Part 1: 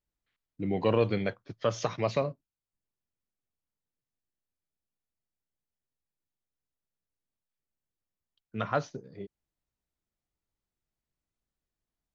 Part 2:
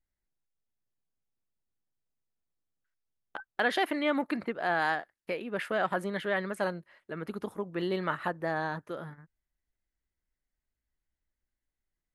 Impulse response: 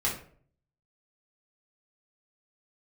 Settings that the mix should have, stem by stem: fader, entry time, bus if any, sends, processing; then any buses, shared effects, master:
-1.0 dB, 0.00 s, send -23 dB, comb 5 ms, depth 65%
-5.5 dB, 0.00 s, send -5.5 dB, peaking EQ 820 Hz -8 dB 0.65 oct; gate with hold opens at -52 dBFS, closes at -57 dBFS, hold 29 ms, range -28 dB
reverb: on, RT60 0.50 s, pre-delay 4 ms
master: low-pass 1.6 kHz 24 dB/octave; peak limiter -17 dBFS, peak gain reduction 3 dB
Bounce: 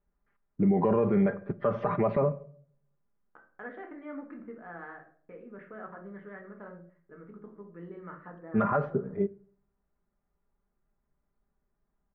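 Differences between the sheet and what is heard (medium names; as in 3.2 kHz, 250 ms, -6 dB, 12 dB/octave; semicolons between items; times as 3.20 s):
stem 1 -1.0 dB -> +9.0 dB; stem 2 -5.5 dB -> -16.0 dB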